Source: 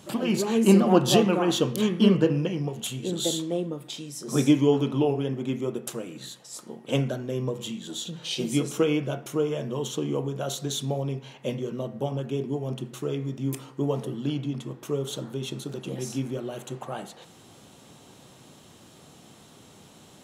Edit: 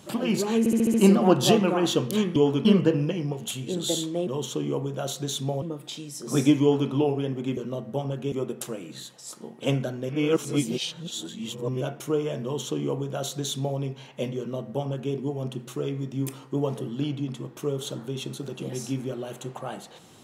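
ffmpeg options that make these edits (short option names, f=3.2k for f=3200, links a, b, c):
-filter_complex "[0:a]asplit=14[a][b][c][d][e][f][g][h][i][j][k][l][m][n];[a]atrim=end=0.662[o];[b]atrim=start=0.588:end=0.662[p];[c]atrim=start=0.588:end=0.662[q];[d]atrim=start=0.588:end=0.662[r];[e]atrim=start=0.588:end=0.662[s];[f]atrim=start=0.588:end=2.012[t];[g]atrim=start=4.628:end=4.922[u];[h]atrim=start=2.008:end=3.632[v];[i]atrim=start=9.688:end=11.042[w];[j]atrim=start=3.628:end=5.582[x];[k]atrim=start=11.638:end=12.392[y];[l]atrim=start=5.578:end=7.352[z];[m]atrim=start=7.348:end=9.072,asetpts=PTS-STARTPTS,areverse[aa];[n]atrim=start=9.068[ab];[o][p]acrossfade=d=0.004:c1=hsin:c2=hsin[ac];[ac][q]acrossfade=d=0.004:c1=hsin:c2=hsin[ad];[ad][r]acrossfade=d=0.004:c1=hsin:c2=hsin[ae];[ae][s]acrossfade=d=0.004:c1=hsin:c2=hsin[af];[af][t]acrossfade=d=0.004:c1=hsin:c2=hsin[ag];[ag][u]acrossfade=d=0.004:c1=hsin:c2=hsin[ah];[ah][v]acrossfade=d=0.004:c1=hsin:c2=hsin[ai];[ai][w]acrossfade=d=0.004:c1=hsin:c2=hsin[aj];[aj][x]acrossfade=d=0.004:c1=hsin:c2=hsin[ak];[ak][y]acrossfade=d=0.004:c1=hsin:c2=hsin[al];[al][z]acrossfade=d=0.004:c1=hsin:c2=hsin[am];[am][aa]acrossfade=d=0.004:c1=hsin:c2=hsin[an];[an][ab]acrossfade=d=0.004:c1=hsin:c2=hsin"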